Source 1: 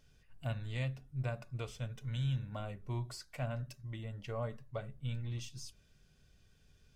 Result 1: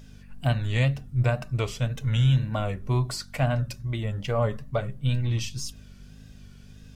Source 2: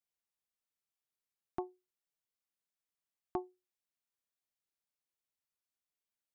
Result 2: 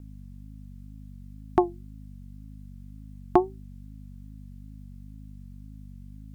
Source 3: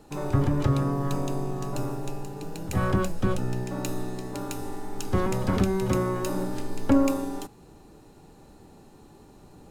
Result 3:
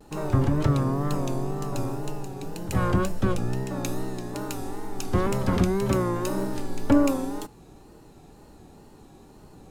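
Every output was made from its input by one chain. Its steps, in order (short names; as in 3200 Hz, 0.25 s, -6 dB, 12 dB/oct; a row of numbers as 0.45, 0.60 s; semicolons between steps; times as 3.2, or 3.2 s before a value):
buzz 50 Hz, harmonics 5, -62 dBFS -4 dB/oct; wow and flutter 90 cents; match loudness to -27 LUFS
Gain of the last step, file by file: +14.0, +18.0, +1.0 dB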